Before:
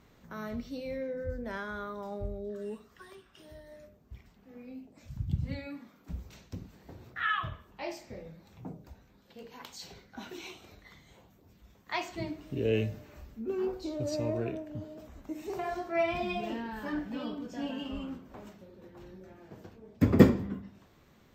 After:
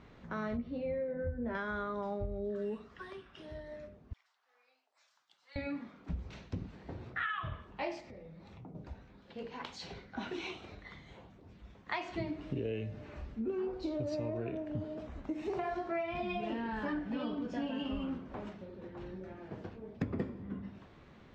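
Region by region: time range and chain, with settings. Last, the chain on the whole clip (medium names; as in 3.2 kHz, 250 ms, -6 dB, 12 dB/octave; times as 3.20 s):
0.57–1.55 s: tape spacing loss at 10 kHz 35 dB + doubling 13 ms -4 dB
4.13–5.56 s: Bessel high-pass 1.6 kHz, order 4 + peaking EQ 2.4 kHz -12.5 dB 1.2 oct
8.00–8.75 s: band-stop 1.6 kHz, Q 11 + compression 4:1, threshold -53 dBFS
whole clip: low-pass 3.5 kHz 12 dB/octave; compression 20:1, threshold -37 dBFS; trim +4.5 dB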